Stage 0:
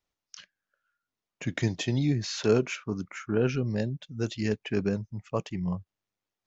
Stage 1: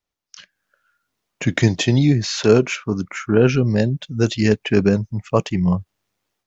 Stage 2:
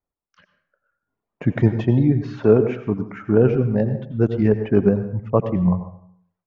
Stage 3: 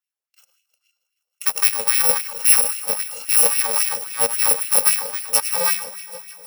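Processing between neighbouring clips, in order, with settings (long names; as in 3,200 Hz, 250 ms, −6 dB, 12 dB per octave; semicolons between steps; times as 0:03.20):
automatic gain control gain up to 13.5 dB
low-pass filter 1,100 Hz 12 dB per octave; reverb reduction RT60 0.78 s; dense smooth reverb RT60 0.62 s, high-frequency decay 0.75×, pre-delay 75 ms, DRR 9.5 dB
samples in bit-reversed order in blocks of 128 samples; echo machine with several playback heads 157 ms, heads all three, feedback 59%, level −22 dB; auto-filter high-pass sine 3.7 Hz 500–2,400 Hz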